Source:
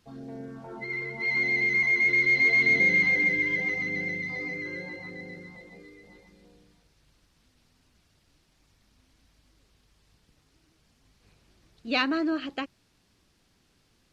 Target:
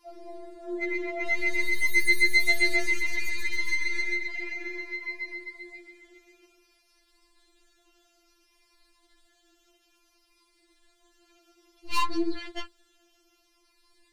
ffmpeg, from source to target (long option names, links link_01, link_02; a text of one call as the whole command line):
ffmpeg -i in.wav -af "afftfilt=real='re*pow(10,7/40*sin(2*PI*(0.92*log(max(b,1)*sr/1024/100)/log(2)-(-0.59)*(pts-256)/sr)))':imag='im*pow(10,7/40*sin(2*PI*(0.92*log(max(b,1)*sr/1024/100)/log(2)-(-0.59)*(pts-256)/sr)))':win_size=1024:overlap=0.75,aeval=exprs='(tanh(22.4*val(0)+0.45)-tanh(0.45))/22.4':channel_layout=same,afftfilt=real='re*4*eq(mod(b,16),0)':imag='im*4*eq(mod(b,16),0)':win_size=2048:overlap=0.75,volume=6dB" out.wav